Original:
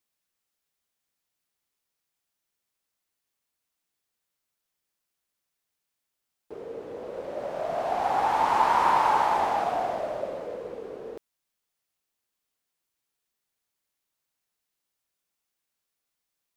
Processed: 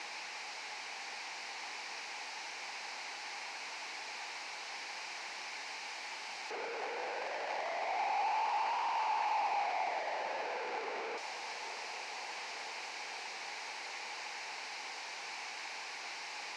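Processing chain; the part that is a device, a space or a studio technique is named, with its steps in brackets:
0:06.71–0:07.58: parametric band 230 Hz −13 dB 0.95 octaves
home computer beeper (sign of each sample alone; loudspeaker in its box 540–5,100 Hz, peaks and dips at 580 Hz −5 dB, 840 Hz +9 dB, 1,300 Hz −6 dB, 2,300 Hz +6 dB, 3,400 Hz −10 dB)
feedback delay with all-pass diffusion 873 ms, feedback 67%, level −13 dB
level −5 dB

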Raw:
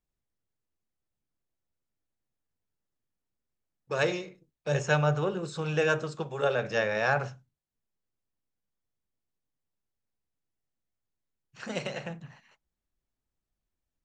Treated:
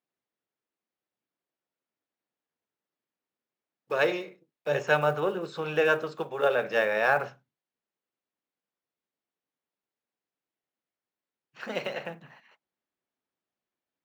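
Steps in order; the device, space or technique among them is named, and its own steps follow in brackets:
early digital voice recorder (band-pass filter 280–3,500 Hz; one scale factor per block 7 bits)
level +3 dB

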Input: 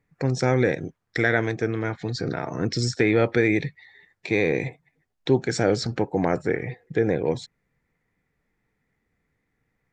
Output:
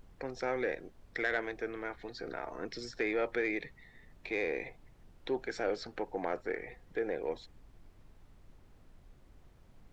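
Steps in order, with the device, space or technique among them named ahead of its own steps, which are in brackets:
aircraft cabin announcement (band-pass filter 420–3,700 Hz; soft clipping −11.5 dBFS, distortion −23 dB; brown noise bed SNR 17 dB)
level −8.5 dB

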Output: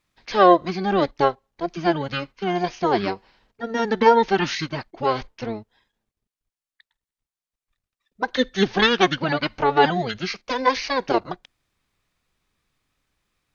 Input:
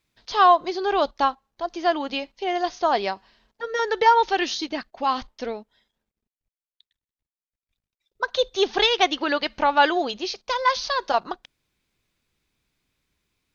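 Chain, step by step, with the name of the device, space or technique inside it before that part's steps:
octave pedal (pitch-shifted copies added −12 semitones 0 dB)
level −1.5 dB

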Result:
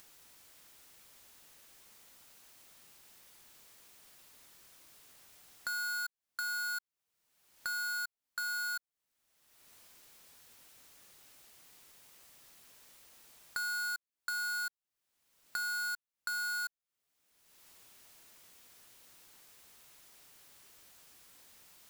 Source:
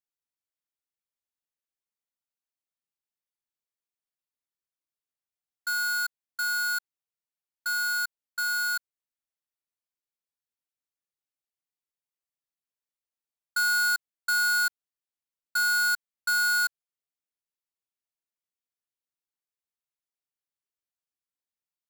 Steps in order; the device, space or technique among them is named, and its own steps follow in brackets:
upward and downward compression (upward compression, threshold −38 dBFS; downward compressor 8 to 1, threshold −40 dBFS, peak gain reduction 14 dB)
level +2.5 dB

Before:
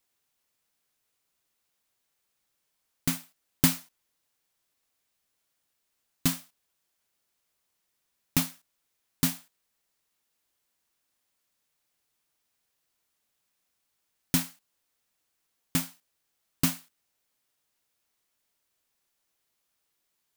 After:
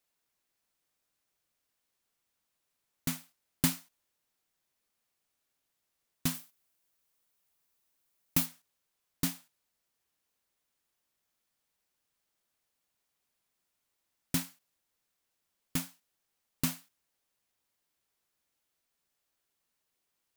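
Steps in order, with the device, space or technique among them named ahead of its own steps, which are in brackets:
plain cassette with noise reduction switched in (one half of a high-frequency compander decoder only; tape wow and flutter; white noise bed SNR 39 dB)
0:06.34–0:08.46: high-shelf EQ 10,000 Hz +8 dB
level −5.5 dB

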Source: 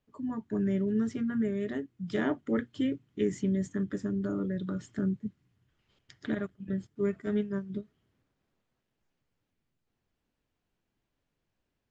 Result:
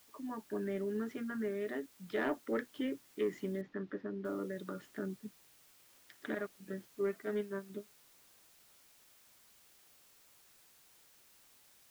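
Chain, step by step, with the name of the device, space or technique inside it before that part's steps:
tape answering machine (band-pass filter 390–2,900 Hz; soft clipping −23.5 dBFS, distortion −24 dB; tape wow and flutter 25 cents; white noise bed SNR 23 dB)
0:03.61–0:04.25: high-frequency loss of the air 260 metres

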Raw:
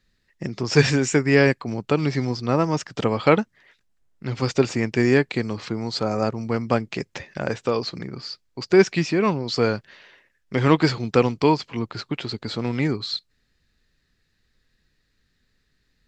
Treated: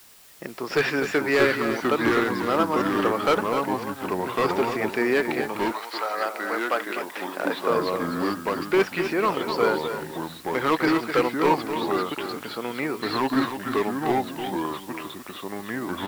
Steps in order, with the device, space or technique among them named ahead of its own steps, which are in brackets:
drive-through speaker (band-pass filter 380–3,000 Hz; parametric band 1,300 Hz +5 dB 0.5 octaves; hard clipping −15.5 dBFS, distortion −11 dB; white noise bed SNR 23 dB)
single-tap delay 252 ms −9 dB
delay with pitch and tempo change per echo 485 ms, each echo −3 semitones, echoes 2
notch filter 6,400 Hz, Q 23
0:05.71–0:07.69: high-pass filter 890 Hz → 230 Hz 12 dB per octave

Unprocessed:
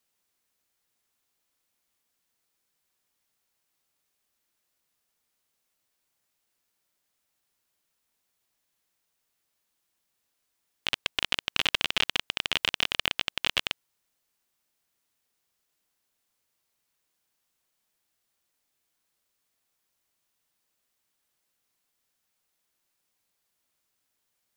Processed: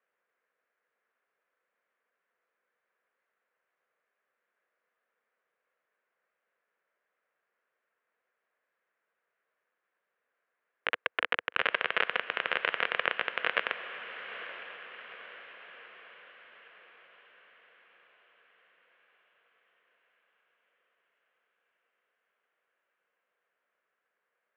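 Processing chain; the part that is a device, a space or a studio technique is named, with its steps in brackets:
high-pass filter 420 Hz 12 dB per octave
bass cabinet (loudspeaker in its box 79–2,000 Hz, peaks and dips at 300 Hz −8 dB, 490 Hz +6 dB, 850 Hz −7 dB, 1,600 Hz +4 dB)
parametric band 11,000 Hz +5.5 dB 0.99 octaves
feedback delay with all-pass diffusion 888 ms, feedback 55%, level −11.5 dB
level +5 dB

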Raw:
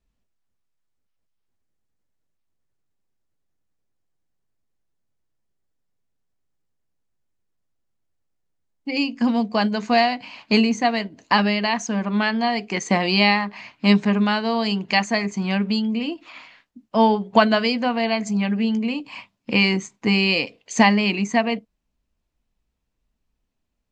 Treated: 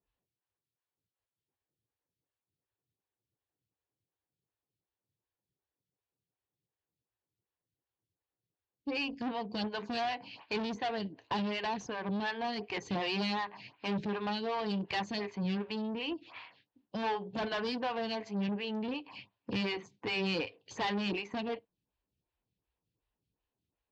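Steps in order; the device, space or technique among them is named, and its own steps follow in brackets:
vibe pedal into a guitar amplifier (phaser with staggered stages 2.7 Hz; tube saturation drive 27 dB, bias 0.4; loudspeaker in its box 76–4,400 Hz, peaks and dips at 110 Hz +7 dB, 230 Hz −9 dB, 630 Hz −6 dB, 1,300 Hz −7 dB, 2,100 Hz −6 dB)

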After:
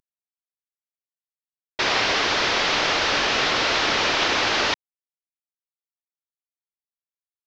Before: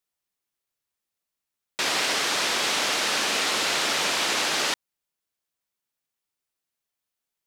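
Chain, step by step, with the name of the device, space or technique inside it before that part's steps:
early wireless headset (high-pass filter 230 Hz 24 dB per octave; variable-slope delta modulation 32 kbit/s)
level +5.5 dB

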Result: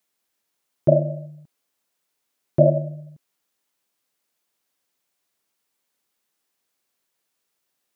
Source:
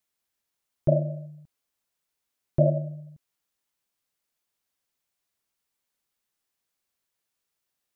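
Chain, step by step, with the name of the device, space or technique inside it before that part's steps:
filter by subtraction (in parallel: low-pass filter 290 Hz 12 dB per octave + polarity inversion)
on the sum: level +5.5 dB

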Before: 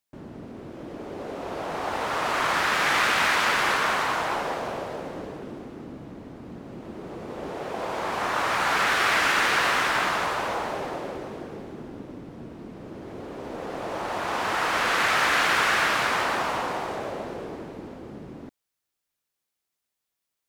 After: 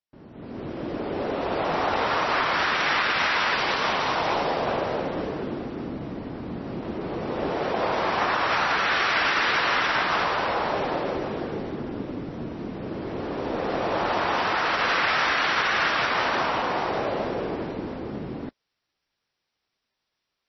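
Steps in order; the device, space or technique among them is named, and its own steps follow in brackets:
0:03.54–0:04.67: dynamic equaliser 1,500 Hz, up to −6 dB, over −37 dBFS, Q 1.3
low-bitrate web radio (automatic gain control gain up to 15 dB; brickwall limiter −6 dBFS, peak gain reduction 5 dB; level −7.5 dB; MP3 24 kbit/s 22,050 Hz)

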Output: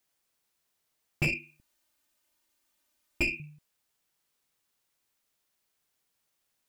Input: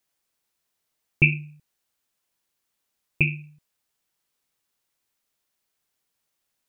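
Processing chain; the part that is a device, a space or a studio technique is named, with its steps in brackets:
saturation between pre-emphasis and de-emphasis (high-shelf EQ 2,600 Hz +10 dB; soft clipping −20.5 dBFS, distortion −4 dB; high-shelf EQ 2,600 Hz −10 dB)
0:01.27–0:03.40: comb filter 3.3 ms, depth 91%

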